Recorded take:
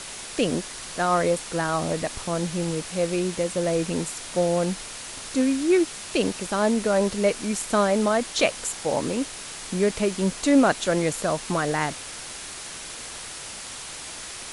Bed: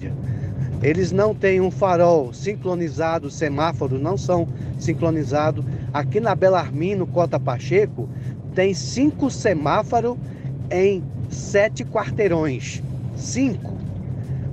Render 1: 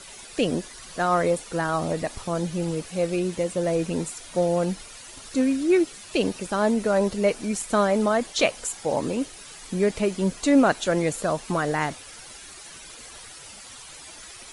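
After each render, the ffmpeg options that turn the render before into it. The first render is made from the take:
-af "afftdn=nr=11:nf=-38"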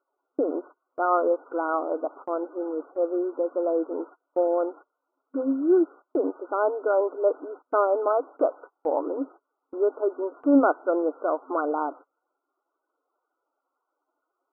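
-af "afftfilt=real='re*between(b*sr/4096,260,1500)':imag='im*between(b*sr/4096,260,1500)':win_size=4096:overlap=0.75,agate=range=0.0398:threshold=0.00794:ratio=16:detection=peak"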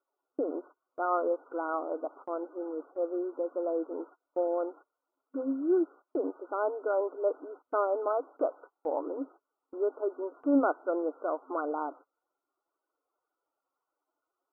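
-af "volume=0.473"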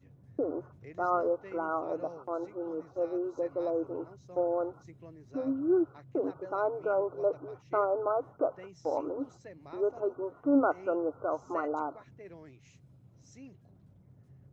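-filter_complex "[1:a]volume=0.0299[s0];[0:a][s0]amix=inputs=2:normalize=0"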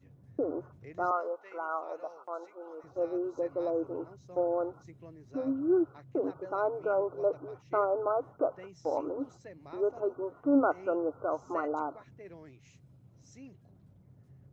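-filter_complex "[0:a]asettb=1/sr,asplit=3[s0][s1][s2];[s0]atrim=end=1.114[s3];[s1]atrim=start=1.11:end=2.84,asetpts=PTS-STARTPTS,afade=t=in:d=0.004:c=qsin,afade=t=out:st=1.726:d=0.004:c=qsin,highpass=680[s4];[s2]atrim=start=2.836[s5];[s3][s4]acrossfade=d=0.004:c1=hsin:c2=qsin[s6];[s6][s5]acrossfade=d=0.004:c1=qsin:c2=hsin"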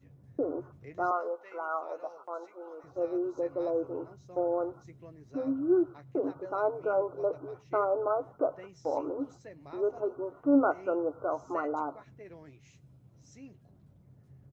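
-filter_complex "[0:a]asplit=2[s0][s1];[s1]adelay=14,volume=0.282[s2];[s0][s2]amix=inputs=2:normalize=0,asplit=2[s3][s4];[s4]adelay=105,volume=0.0501,highshelf=f=4000:g=-2.36[s5];[s3][s5]amix=inputs=2:normalize=0"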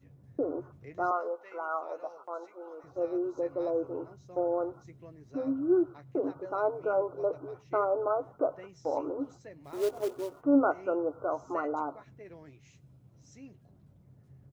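-filter_complex "[0:a]asettb=1/sr,asplit=3[s0][s1][s2];[s0]atrim=end=9.644[s3];[s1]atrim=start=9.64:end=10.42,asetpts=PTS-STARTPTS,afade=t=in:d=0.004:c=qsin,afade=t=out:st=0.776:d=0.004:c=qsin,acrusher=bits=4:mode=log:mix=0:aa=0.000001[s4];[s2]atrim=start=10.416[s5];[s3][s4]acrossfade=d=0.004:c1=hsin:c2=qsin[s6];[s6][s5]acrossfade=d=0.004:c1=qsin:c2=hsin"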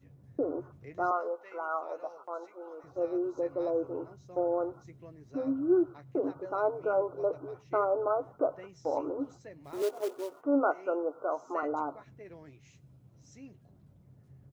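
-filter_complex "[0:a]asettb=1/sr,asplit=3[s0][s1][s2];[s0]atrim=end=9.824[s3];[s1]atrim=start=9.82:end=11.63,asetpts=PTS-STARTPTS,afade=t=in:d=0.004:c=qsin,afade=t=out:st=1.806:d=0.004:c=qsin,highpass=330[s4];[s2]atrim=start=11.626[s5];[s3][s4]acrossfade=d=0.004:c1=hsin:c2=qsin[s6];[s6][s5]acrossfade=d=0.004:c1=qsin:c2=hsin"

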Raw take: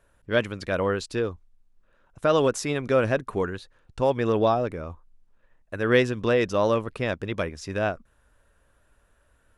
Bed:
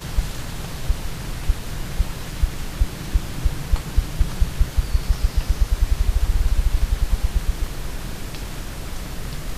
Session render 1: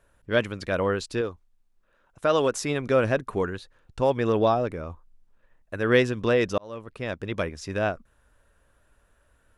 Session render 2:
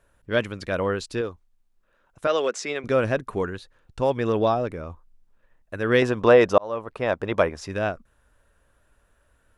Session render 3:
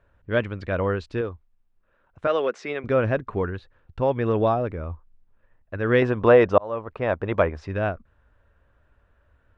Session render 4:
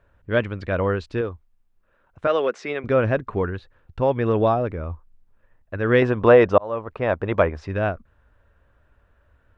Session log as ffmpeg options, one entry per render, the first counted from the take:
-filter_complex "[0:a]asettb=1/sr,asplit=3[s0][s1][s2];[s0]atrim=end=1.214[s3];[s1]atrim=start=1.21:end=2.53,asetpts=PTS-STARTPTS,afade=t=in:d=0.004:c=qsin,afade=t=out:st=1.316:d=0.004:c=qsin,lowshelf=f=250:g=-6.5[s4];[s2]atrim=start=2.526[s5];[s3][s4]acrossfade=d=0.004:c1=hsin:c2=qsin[s6];[s6][s5]acrossfade=d=0.004:c1=qsin:c2=hsin,asplit=2[s7][s8];[s7]atrim=end=6.58,asetpts=PTS-STARTPTS,afade=t=out:st=6.576:d=0.004:c=hsin[s9];[s8]atrim=start=6.58,asetpts=PTS-STARTPTS,afade=t=in:d=0.8[s10];[s9][s10]concat=n=2:v=0:a=1"
-filter_complex "[0:a]asettb=1/sr,asplit=3[s0][s1][s2];[s0]atrim=end=2.274[s3];[s1]atrim=start=2.27:end=2.84,asetpts=PTS-STARTPTS,afade=t=in:d=0.004:c=qsin,afade=t=out:st=0.566:d=0.004:c=qsin,highpass=f=220:w=0.5412,highpass=f=220:w=1.3066,equalizer=f=280:t=q:w=4:g=-8,equalizer=f=940:t=q:w=4:g=-5,equalizer=f=2100:t=q:w=4:g=4,lowpass=f=7500:w=0.5412,lowpass=f=7500:w=1.3066[s4];[s2]atrim=start=2.836[s5];[s3][s4]acrossfade=d=0.004:c1=hsin:c2=qsin[s6];[s6][s5]acrossfade=d=0.004:c1=qsin:c2=hsin,asettb=1/sr,asplit=3[s7][s8][s9];[s7]atrim=end=6.024[s10];[s8]atrim=start=6.02:end=7.67,asetpts=PTS-STARTPTS,afade=t=in:d=0.004:c=qsin,afade=t=out:st=1.646:d=0.004:c=qsin,equalizer=f=810:t=o:w=2:g=12[s11];[s9]atrim=start=7.666[s12];[s10][s11]acrossfade=d=0.004:c1=hsin:c2=qsin[s13];[s13][s12]acrossfade=d=0.004:c1=qsin:c2=hsin"
-af "lowpass=2600,equalizer=f=81:w=1.5:g=7.5"
-af "volume=1.26,alimiter=limit=0.708:level=0:latency=1"

